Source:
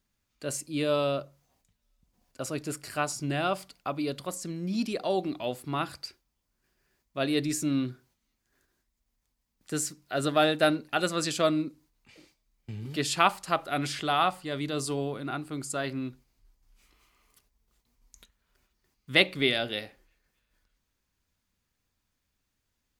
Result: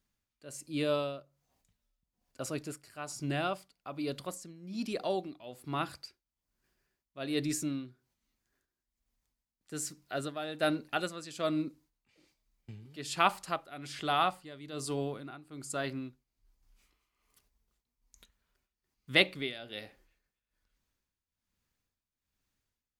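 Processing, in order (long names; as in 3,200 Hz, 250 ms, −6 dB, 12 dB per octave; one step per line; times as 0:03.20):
amplitude tremolo 1.2 Hz, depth 78%
level −3 dB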